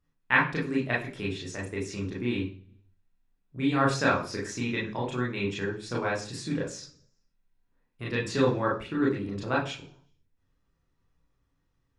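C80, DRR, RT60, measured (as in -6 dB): 13.0 dB, -5.0 dB, 0.45 s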